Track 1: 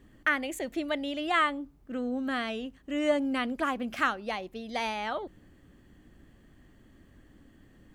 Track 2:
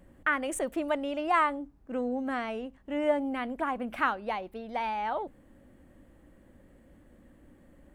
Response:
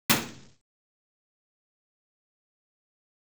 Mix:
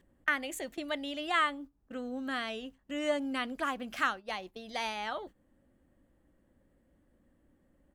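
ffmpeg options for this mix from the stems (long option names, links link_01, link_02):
-filter_complex "[0:a]tiltshelf=frequency=970:gain=-3.5,volume=-3.5dB[link_01];[1:a]acompressor=threshold=-38dB:ratio=12,volume=-1,adelay=13,volume=-11.5dB,asplit=2[link_02][link_03];[link_03]apad=whole_len=350589[link_04];[link_01][link_04]sidechaingate=range=-33dB:threshold=-59dB:ratio=16:detection=peak[link_05];[link_05][link_02]amix=inputs=2:normalize=0,equalizer=frequency=2300:width_type=o:width=0.43:gain=-2.5"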